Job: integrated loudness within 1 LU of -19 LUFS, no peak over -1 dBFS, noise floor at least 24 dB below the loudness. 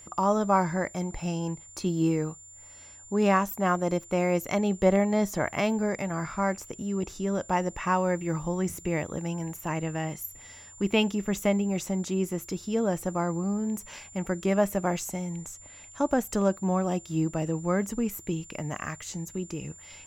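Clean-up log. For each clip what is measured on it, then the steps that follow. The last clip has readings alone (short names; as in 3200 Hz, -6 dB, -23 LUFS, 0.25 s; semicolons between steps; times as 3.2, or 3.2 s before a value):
dropouts 1; longest dropout 1.6 ms; steady tone 7200 Hz; tone level -47 dBFS; loudness -28.5 LUFS; peak -9.0 dBFS; loudness target -19.0 LUFS
-> interpolate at 3.91, 1.6 ms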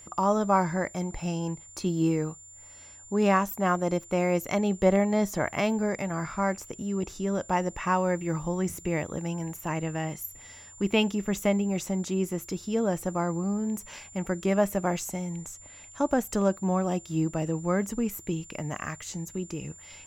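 dropouts 0; steady tone 7200 Hz; tone level -47 dBFS
-> notch 7200 Hz, Q 30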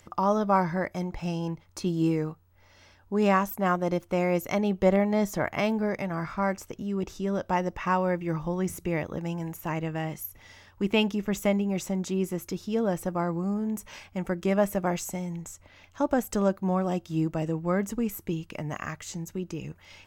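steady tone none; loudness -28.5 LUFS; peak -9.0 dBFS; loudness target -19.0 LUFS
-> gain +9.5 dB; limiter -1 dBFS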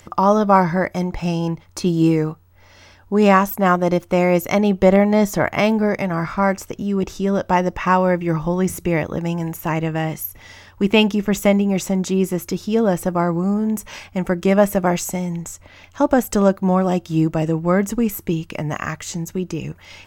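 loudness -19.0 LUFS; peak -1.0 dBFS; noise floor -49 dBFS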